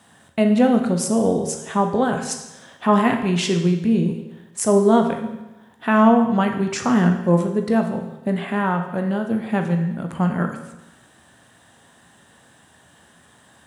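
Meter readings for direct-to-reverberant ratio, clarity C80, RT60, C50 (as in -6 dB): 4.0 dB, 9.5 dB, 1.0 s, 7.5 dB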